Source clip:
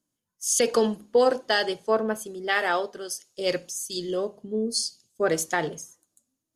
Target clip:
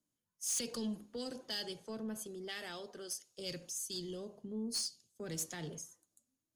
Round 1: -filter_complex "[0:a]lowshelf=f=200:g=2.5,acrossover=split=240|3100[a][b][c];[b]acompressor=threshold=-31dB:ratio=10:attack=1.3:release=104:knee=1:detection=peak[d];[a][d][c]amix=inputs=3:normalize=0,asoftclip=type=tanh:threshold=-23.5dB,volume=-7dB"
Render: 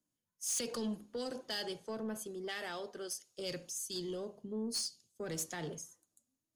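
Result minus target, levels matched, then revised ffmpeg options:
compressor: peak gain reduction -6.5 dB
-filter_complex "[0:a]lowshelf=f=200:g=2.5,acrossover=split=240|3100[a][b][c];[b]acompressor=threshold=-38dB:ratio=10:attack=1.3:release=104:knee=1:detection=peak[d];[a][d][c]amix=inputs=3:normalize=0,asoftclip=type=tanh:threshold=-23.5dB,volume=-7dB"

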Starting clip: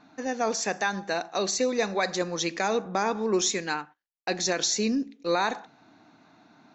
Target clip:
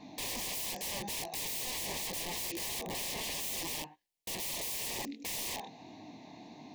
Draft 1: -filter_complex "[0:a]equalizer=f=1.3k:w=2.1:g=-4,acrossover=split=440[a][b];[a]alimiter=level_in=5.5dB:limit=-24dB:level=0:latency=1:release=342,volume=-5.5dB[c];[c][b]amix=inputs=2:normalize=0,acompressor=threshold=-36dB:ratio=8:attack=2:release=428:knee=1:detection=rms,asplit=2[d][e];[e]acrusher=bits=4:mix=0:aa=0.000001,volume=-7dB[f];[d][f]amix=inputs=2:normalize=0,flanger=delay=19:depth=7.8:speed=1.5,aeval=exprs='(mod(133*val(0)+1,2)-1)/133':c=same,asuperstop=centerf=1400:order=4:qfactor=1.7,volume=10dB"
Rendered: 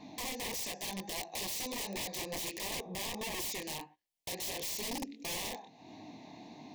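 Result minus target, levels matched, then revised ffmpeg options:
compressor: peak gain reduction +7.5 dB
-filter_complex "[0:a]equalizer=f=1.3k:w=2.1:g=-4,acrossover=split=440[a][b];[a]alimiter=level_in=5.5dB:limit=-24dB:level=0:latency=1:release=342,volume=-5.5dB[c];[c][b]amix=inputs=2:normalize=0,acompressor=threshold=-27.5dB:ratio=8:attack=2:release=428:knee=1:detection=rms,asplit=2[d][e];[e]acrusher=bits=4:mix=0:aa=0.000001,volume=-7dB[f];[d][f]amix=inputs=2:normalize=0,flanger=delay=19:depth=7.8:speed=1.5,aeval=exprs='(mod(133*val(0)+1,2)-1)/133':c=same,asuperstop=centerf=1400:order=4:qfactor=1.7,volume=10dB"

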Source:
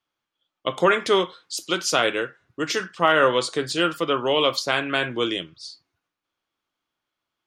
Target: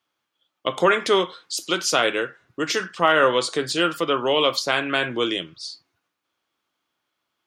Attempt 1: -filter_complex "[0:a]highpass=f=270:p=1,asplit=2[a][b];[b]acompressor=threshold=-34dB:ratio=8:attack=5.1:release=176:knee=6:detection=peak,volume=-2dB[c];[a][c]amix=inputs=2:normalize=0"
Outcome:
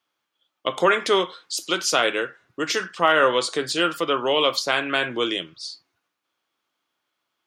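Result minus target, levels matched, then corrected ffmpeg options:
125 Hz band -3.5 dB
-filter_complex "[0:a]highpass=f=130:p=1,asplit=2[a][b];[b]acompressor=threshold=-34dB:ratio=8:attack=5.1:release=176:knee=6:detection=peak,volume=-2dB[c];[a][c]amix=inputs=2:normalize=0"

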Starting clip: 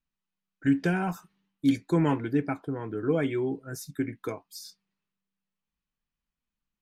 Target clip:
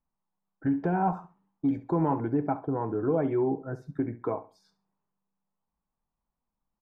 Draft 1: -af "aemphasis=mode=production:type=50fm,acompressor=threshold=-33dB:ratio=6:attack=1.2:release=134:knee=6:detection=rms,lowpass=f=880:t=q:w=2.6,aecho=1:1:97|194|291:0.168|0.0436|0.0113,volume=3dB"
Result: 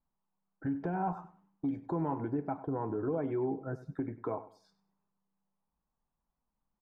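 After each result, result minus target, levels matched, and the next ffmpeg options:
echo 29 ms late; compressor: peak gain reduction +7.5 dB
-af "aemphasis=mode=production:type=50fm,acompressor=threshold=-33dB:ratio=6:attack=1.2:release=134:knee=6:detection=rms,lowpass=f=880:t=q:w=2.6,aecho=1:1:68|136|204:0.168|0.0436|0.0113,volume=3dB"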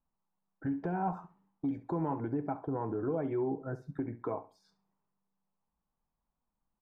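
compressor: peak gain reduction +7.5 dB
-af "aemphasis=mode=production:type=50fm,acompressor=threshold=-24dB:ratio=6:attack=1.2:release=134:knee=6:detection=rms,lowpass=f=880:t=q:w=2.6,aecho=1:1:68|136|204:0.168|0.0436|0.0113,volume=3dB"

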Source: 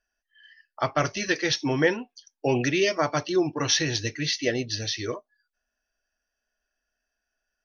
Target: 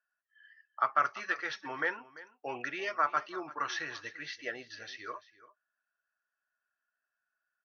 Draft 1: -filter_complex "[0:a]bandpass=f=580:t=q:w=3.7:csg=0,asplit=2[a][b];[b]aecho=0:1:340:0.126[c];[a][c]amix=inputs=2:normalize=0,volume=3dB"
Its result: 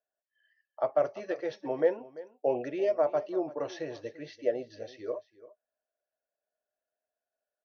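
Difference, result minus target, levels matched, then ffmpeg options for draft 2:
500 Hz band +11.5 dB
-filter_complex "[0:a]bandpass=f=1.3k:t=q:w=3.7:csg=0,asplit=2[a][b];[b]aecho=0:1:340:0.126[c];[a][c]amix=inputs=2:normalize=0,volume=3dB"

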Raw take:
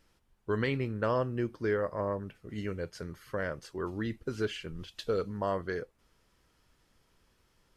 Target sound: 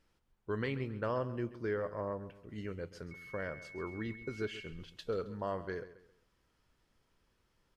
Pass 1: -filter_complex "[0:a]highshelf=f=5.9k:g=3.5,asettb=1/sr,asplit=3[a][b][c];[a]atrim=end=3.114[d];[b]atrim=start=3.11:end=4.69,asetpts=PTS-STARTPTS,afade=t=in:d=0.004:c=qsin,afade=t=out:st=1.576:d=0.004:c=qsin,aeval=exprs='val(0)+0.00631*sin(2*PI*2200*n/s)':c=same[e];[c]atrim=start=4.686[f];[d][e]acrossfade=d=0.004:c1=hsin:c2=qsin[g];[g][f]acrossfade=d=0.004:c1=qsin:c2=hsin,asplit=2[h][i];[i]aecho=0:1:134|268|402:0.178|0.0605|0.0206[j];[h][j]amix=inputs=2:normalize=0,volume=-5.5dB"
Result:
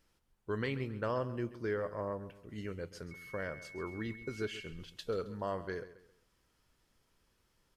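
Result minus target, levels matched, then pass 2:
8000 Hz band +5.0 dB
-filter_complex "[0:a]highshelf=f=5.9k:g=-5.5,asettb=1/sr,asplit=3[a][b][c];[a]atrim=end=3.114[d];[b]atrim=start=3.11:end=4.69,asetpts=PTS-STARTPTS,afade=t=in:d=0.004:c=qsin,afade=t=out:st=1.576:d=0.004:c=qsin,aeval=exprs='val(0)+0.00631*sin(2*PI*2200*n/s)':c=same[e];[c]atrim=start=4.686[f];[d][e]acrossfade=d=0.004:c1=hsin:c2=qsin[g];[g][f]acrossfade=d=0.004:c1=qsin:c2=hsin,asplit=2[h][i];[i]aecho=0:1:134|268|402:0.178|0.0605|0.0206[j];[h][j]amix=inputs=2:normalize=0,volume=-5.5dB"

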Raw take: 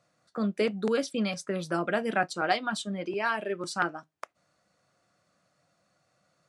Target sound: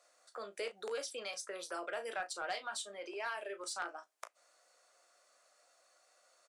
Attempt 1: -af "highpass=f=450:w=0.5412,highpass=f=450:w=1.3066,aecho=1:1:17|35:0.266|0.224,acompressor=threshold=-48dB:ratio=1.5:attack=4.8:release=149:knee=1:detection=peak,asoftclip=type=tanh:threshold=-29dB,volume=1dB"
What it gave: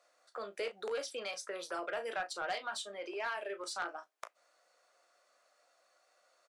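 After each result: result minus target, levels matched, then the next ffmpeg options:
8000 Hz band -4.0 dB; compressor: peak gain reduction -3 dB
-af "highpass=f=450:w=0.5412,highpass=f=450:w=1.3066,equalizer=f=8.7k:w=0.79:g=8,aecho=1:1:17|35:0.266|0.224,acompressor=threshold=-48dB:ratio=1.5:attack=4.8:release=149:knee=1:detection=peak,asoftclip=type=tanh:threshold=-29dB,volume=1dB"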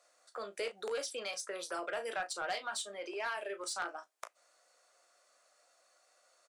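compressor: peak gain reduction -3 dB
-af "highpass=f=450:w=0.5412,highpass=f=450:w=1.3066,equalizer=f=8.7k:w=0.79:g=8,aecho=1:1:17|35:0.266|0.224,acompressor=threshold=-57dB:ratio=1.5:attack=4.8:release=149:knee=1:detection=peak,asoftclip=type=tanh:threshold=-29dB,volume=1dB"

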